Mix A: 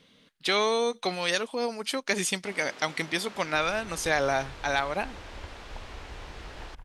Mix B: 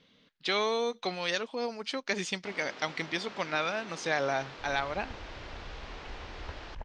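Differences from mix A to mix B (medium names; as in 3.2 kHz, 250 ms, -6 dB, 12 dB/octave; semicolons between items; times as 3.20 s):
speech -4.0 dB; second sound: entry +1.05 s; master: add low-pass 6 kHz 24 dB/octave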